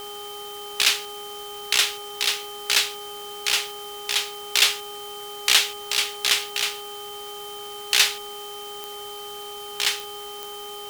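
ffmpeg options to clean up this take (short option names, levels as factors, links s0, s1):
-af "adeclick=t=4,bandreject=f=411.5:t=h:w=4,bandreject=f=823:t=h:w=4,bandreject=f=1234.5:t=h:w=4,bandreject=f=3100:w=30,afftdn=nr=30:nf=-36"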